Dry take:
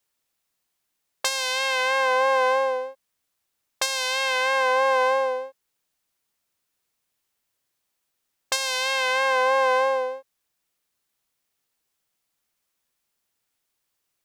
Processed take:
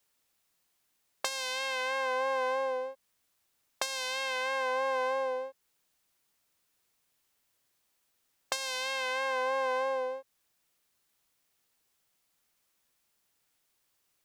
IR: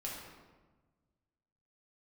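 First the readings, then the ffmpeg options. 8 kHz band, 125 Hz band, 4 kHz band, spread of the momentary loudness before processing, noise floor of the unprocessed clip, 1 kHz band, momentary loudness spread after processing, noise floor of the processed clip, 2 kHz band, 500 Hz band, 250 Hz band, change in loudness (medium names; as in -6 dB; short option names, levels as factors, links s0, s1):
-9.5 dB, no reading, -9.5 dB, 9 LU, -78 dBFS, -10.0 dB, 7 LU, -76 dBFS, -10.0 dB, -9.0 dB, -3.0 dB, -9.5 dB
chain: -filter_complex "[0:a]acrossover=split=240[s0][s1];[s1]acompressor=threshold=0.0141:ratio=2.5[s2];[s0][s2]amix=inputs=2:normalize=0,volume=1.26"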